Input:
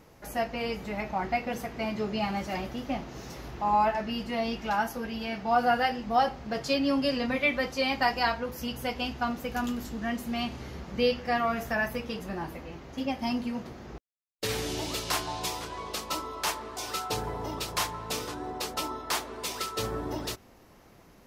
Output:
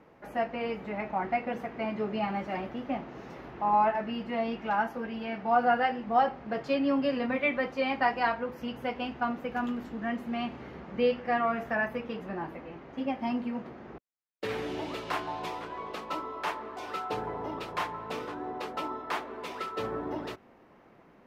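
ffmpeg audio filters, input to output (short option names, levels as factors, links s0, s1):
-filter_complex "[0:a]acrossover=split=150 2800:gain=0.224 1 0.0891[s0][s1][s2];[s0][s1][s2]amix=inputs=3:normalize=0"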